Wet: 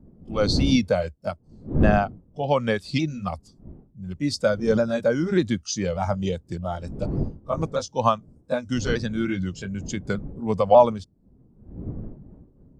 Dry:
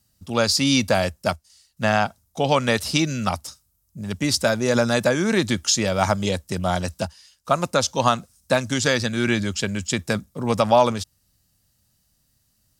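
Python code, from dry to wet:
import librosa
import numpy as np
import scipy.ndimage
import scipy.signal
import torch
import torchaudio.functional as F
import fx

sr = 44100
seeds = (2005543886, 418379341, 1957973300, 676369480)

y = fx.pitch_ramps(x, sr, semitones=-2.0, every_ms=597)
y = fx.dmg_wind(y, sr, seeds[0], corner_hz=250.0, level_db=-31.0)
y = fx.spectral_expand(y, sr, expansion=1.5)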